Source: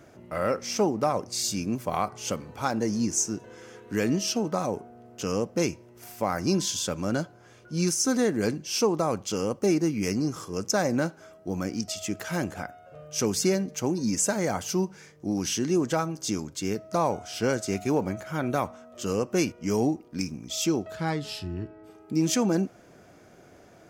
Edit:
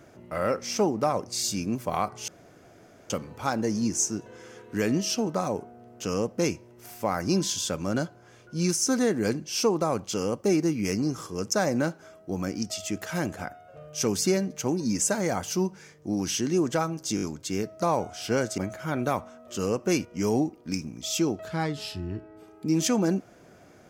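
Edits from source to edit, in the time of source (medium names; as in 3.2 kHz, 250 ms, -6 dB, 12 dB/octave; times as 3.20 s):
2.28 s: insert room tone 0.82 s
16.34 s: stutter 0.02 s, 4 plays
17.70–18.05 s: delete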